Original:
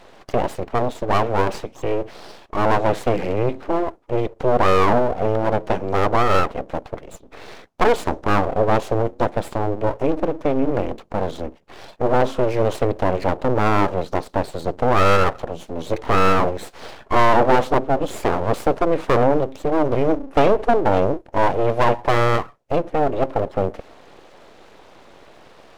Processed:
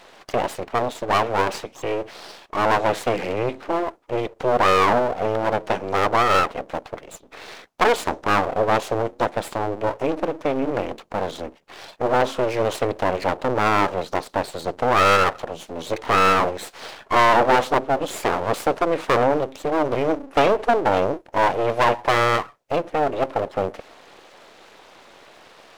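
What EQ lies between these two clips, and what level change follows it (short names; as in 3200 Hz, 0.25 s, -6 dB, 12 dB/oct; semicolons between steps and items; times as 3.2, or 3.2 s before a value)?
tilt shelf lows -4 dB, about 850 Hz; low shelf 90 Hz -8 dB; 0.0 dB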